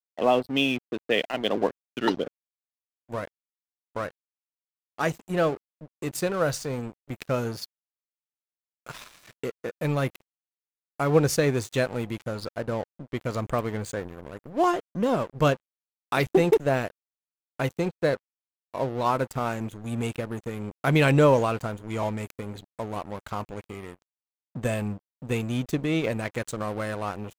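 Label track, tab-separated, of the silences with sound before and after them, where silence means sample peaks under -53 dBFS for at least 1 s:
7.660000	8.860000	silence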